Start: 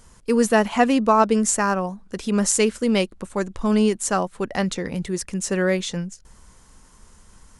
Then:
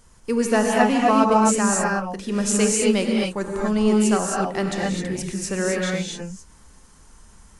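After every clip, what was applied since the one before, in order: gated-style reverb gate 290 ms rising, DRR -2 dB; trim -3.5 dB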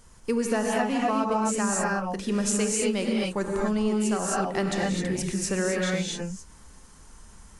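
compression 6:1, threshold -22 dBFS, peak gain reduction 10.5 dB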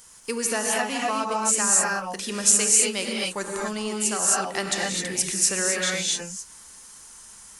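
tilt EQ +3.5 dB/octave; trim +1 dB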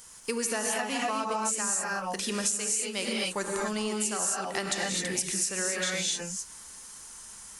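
compression 10:1, threshold -26 dBFS, peak gain reduction 13.5 dB

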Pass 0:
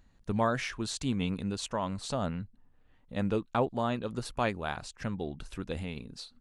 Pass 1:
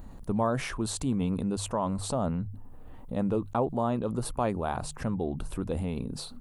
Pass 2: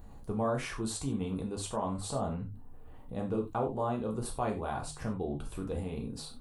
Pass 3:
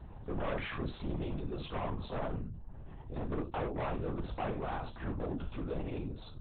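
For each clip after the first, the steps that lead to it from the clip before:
high-order bell 3.2 kHz -11.5 dB 2.5 oct; hum notches 50/100/150 Hz; level flattener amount 50%
gated-style reverb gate 120 ms falling, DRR 0.5 dB; trim -6.5 dB
hard clipper -32 dBFS, distortion -10 dB; LPC vocoder at 8 kHz whisper

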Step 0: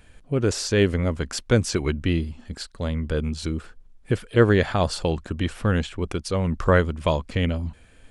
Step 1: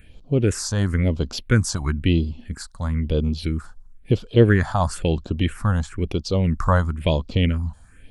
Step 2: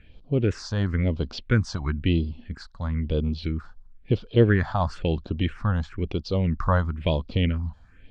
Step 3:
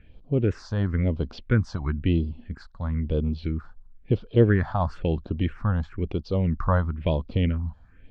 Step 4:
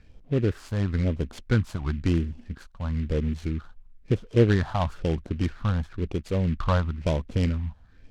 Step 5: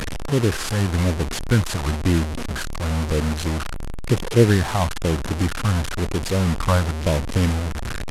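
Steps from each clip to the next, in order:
phase shifter stages 4, 1 Hz, lowest notch 380–1900 Hz; trim +3.5 dB
low-pass 4.8 kHz 24 dB/octave; trim -3.5 dB
treble shelf 2.9 kHz -12 dB
delay time shaken by noise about 2 kHz, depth 0.039 ms; trim -1 dB
one-bit delta coder 64 kbps, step -25 dBFS; trim +4.5 dB

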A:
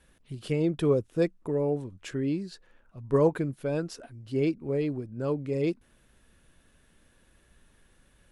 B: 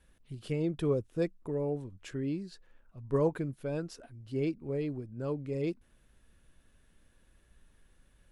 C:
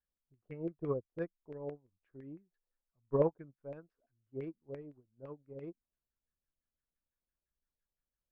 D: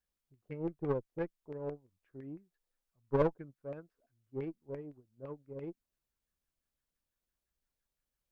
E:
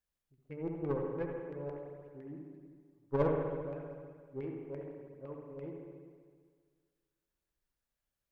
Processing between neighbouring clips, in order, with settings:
bass shelf 83 Hz +7.5 dB; trim -6 dB
LFO low-pass saw down 5.9 Hz 530–2100 Hz; upward expansion 2.5:1, over -42 dBFS; trim -1.5 dB
single-diode clipper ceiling -33.5 dBFS; trim +3.5 dB
reverberation RT60 1.8 s, pre-delay 64 ms, DRR 0.5 dB; trim -2.5 dB

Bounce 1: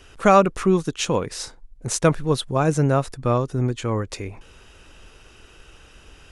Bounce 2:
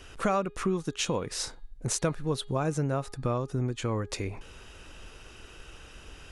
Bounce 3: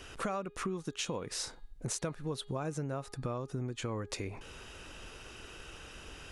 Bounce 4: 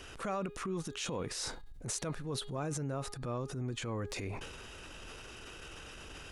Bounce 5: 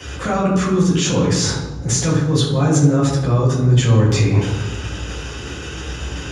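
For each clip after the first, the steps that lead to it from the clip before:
compression 3:1, threshold -28 dBFS, peak gain reduction 14.5 dB; de-hum 412.2 Hz, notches 11
bass shelf 67 Hz -7 dB; compression 2.5:1, threshold -38 dBFS, peak gain reduction 10.5 dB; trim +1 dB
transient shaper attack -7 dB, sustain +8 dB
reverberation RT60 1.2 s, pre-delay 3 ms, DRR -7 dB; trim +7.5 dB

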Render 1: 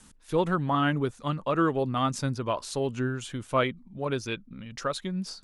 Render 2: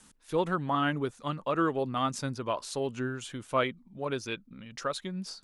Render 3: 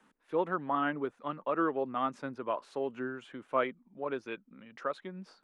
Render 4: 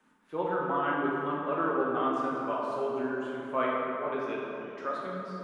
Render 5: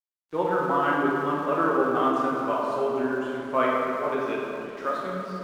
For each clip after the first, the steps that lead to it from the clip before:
bass shelf 140 Hz -8.5 dB; trim -2 dB
three-band isolator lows -19 dB, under 210 Hz, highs -22 dB, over 2.5 kHz; trim -1.5 dB
plate-style reverb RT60 3.1 s, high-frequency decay 0.5×, DRR -5 dB; trim -3 dB
crossover distortion -55.5 dBFS; trim +6 dB

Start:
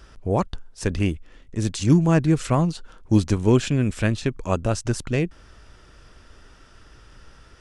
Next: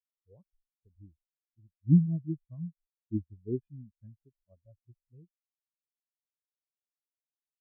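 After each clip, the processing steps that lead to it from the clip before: bass shelf 280 Hz -2.5 dB; transient shaper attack +1 dB, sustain +5 dB; spectral contrast expander 4:1; trim -6 dB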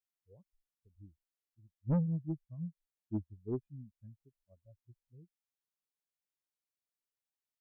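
saturation -24 dBFS, distortion -7 dB; trim -2 dB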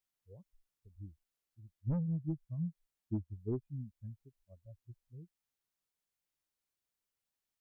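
bass shelf 110 Hz +8 dB; compression 6:1, threshold -35 dBFS, peak gain reduction 10.5 dB; trim +3 dB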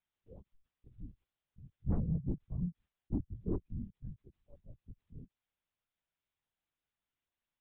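LPC vocoder at 8 kHz whisper; trim +1.5 dB

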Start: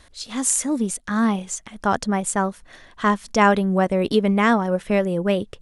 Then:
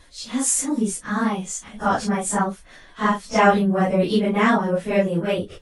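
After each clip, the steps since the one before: phase randomisation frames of 100 ms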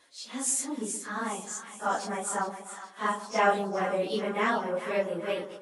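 high-pass 330 Hz 12 dB/octave; two-band feedback delay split 950 Hz, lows 124 ms, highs 416 ms, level -11 dB; trim -7.5 dB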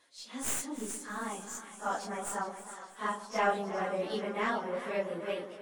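tracing distortion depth 0.045 ms; modulated delay 317 ms, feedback 48%, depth 78 cents, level -15 dB; trim -5 dB

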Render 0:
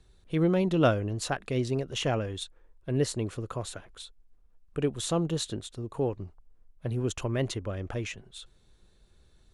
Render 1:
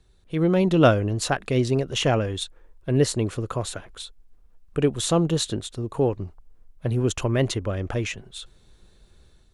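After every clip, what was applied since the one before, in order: level rider gain up to 7 dB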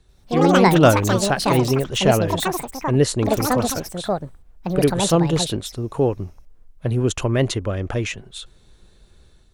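ever faster or slower copies 87 ms, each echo +7 st, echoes 2; trim +3 dB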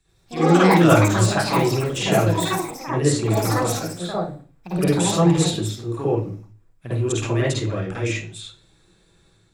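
reverberation RT60 0.40 s, pre-delay 47 ms, DRR -6.5 dB; trim -5 dB

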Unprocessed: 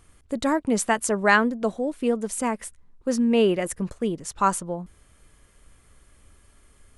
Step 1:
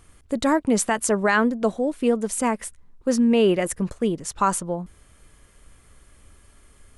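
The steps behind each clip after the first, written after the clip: loudness maximiser +11.5 dB; trim -8.5 dB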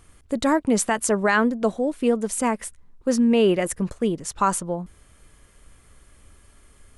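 no audible change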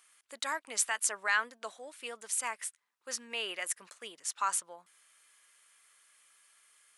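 high-pass 1.5 kHz 12 dB/octave; trim -4 dB

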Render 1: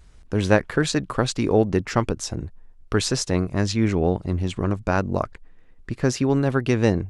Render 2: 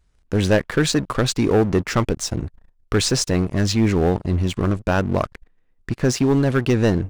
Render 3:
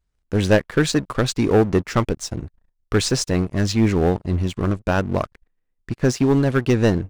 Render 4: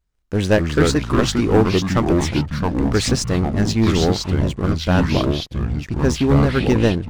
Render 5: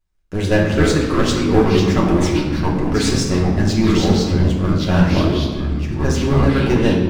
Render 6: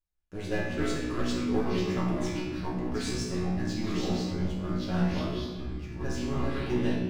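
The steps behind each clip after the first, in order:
waveshaping leveller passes 3; trim -6.5 dB
upward expansion 1.5:1, over -39 dBFS; trim +2 dB
ever faster or slower copies 158 ms, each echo -4 st, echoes 3
reverberation RT60 1.5 s, pre-delay 3 ms, DRR -3.5 dB; trim -4 dB
feedback comb 61 Hz, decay 0.53 s, harmonics all, mix 90%; trim -5.5 dB

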